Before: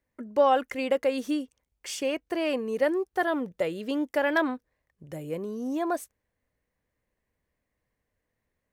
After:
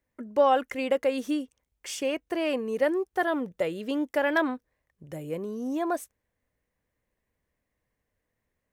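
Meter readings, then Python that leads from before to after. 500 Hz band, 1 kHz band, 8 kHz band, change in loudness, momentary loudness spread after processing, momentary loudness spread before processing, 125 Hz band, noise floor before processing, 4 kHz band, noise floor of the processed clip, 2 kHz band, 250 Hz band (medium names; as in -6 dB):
0.0 dB, 0.0 dB, 0.0 dB, 0.0 dB, 14 LU, 13 LU, 0.0 dB, -83 dBFS, -0.5 dB, -82 dBFS, 0.0 dB, 0.0 dB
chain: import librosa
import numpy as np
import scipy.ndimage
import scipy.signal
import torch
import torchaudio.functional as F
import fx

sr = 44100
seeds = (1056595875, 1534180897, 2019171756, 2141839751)

y = fx.peak_eq(x, sr, hz=4500.0, db=-3.0, octaves=0.22)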